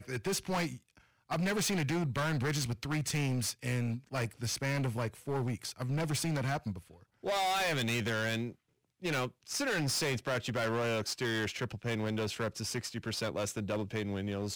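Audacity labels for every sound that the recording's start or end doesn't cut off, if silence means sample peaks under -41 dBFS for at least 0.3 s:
1.300000	6.790000	sound
7.240000	8.510000	sound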